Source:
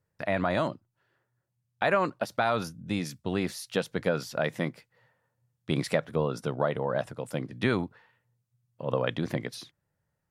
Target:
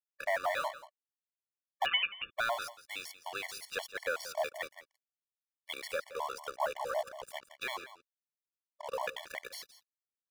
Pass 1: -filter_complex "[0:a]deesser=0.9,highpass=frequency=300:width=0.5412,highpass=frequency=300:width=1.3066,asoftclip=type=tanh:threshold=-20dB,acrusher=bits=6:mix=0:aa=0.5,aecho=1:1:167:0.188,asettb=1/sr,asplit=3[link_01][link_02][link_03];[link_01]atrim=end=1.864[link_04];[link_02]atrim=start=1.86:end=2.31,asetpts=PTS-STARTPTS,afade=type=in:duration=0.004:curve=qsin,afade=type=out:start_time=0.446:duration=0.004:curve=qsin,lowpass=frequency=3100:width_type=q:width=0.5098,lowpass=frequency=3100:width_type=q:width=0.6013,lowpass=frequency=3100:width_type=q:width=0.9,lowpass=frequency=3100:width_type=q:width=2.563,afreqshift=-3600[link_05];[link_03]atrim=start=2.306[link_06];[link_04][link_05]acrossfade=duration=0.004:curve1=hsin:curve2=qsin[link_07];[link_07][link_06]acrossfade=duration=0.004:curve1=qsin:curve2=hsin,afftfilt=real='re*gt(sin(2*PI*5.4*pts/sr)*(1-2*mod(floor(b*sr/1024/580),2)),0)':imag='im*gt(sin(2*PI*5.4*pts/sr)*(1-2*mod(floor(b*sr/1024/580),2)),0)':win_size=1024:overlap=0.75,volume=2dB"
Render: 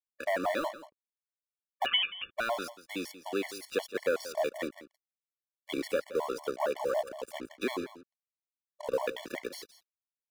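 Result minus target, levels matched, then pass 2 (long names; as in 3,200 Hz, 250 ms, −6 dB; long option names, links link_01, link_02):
250 Hz band +18.0 dB
-filter_complex "[0:a]deesser=0.9,highpass=frequency=660:width=0.5412,highpass=frequency=660:width=1.3066,asoftclip=type=tanh:threshold=-20dB,acrusher=bits=6:mix=0:aa=0.5,aecho=1:1:167:0.188,asettb=1/sr,asplit=3[link_01][link_02][link_03];[link_01]atrim=end=1.864[link_04];[link_02]atrim=start=1.86:end=2.31,asetpts=PTS-STARTPTS,afade=type=in:duration=0.004:curve=qsin,afade=type=out:start_time=0.446:duration=0.004:curve=qsin,lowpass=frequency=3100:width_type=q:width=0.5098,lowpass=frequency=3100:width_type=q:width=0.6013,lowpass=frequency=3100:width_type=q:width=0.9,lowpass=frequency=3100:width_type=q:width=2.563,afreqshift=-3600[link_05];[link_03]atrim=start=2.306[link_06];[link_04][link_05]acrossfade=duration=0.004:curve1=hsin:curve2=qsin[link_07];[link_07][link_06]acrossfade=duration=0.004:curve1=qsin:curve2=hsin,afftfilt=real='re*gt(sin(2*PI*5.4*pts/sr)*(1-2*mod(floor(b*sr/1024/580),2)),0)':imag='im*gt(sin(2*PI*5.4*pts/sr)*(1-2*mod(floor(b*sr/1024/580),2)),0)':win_size=1024:overlap=0.75,volume=2dB"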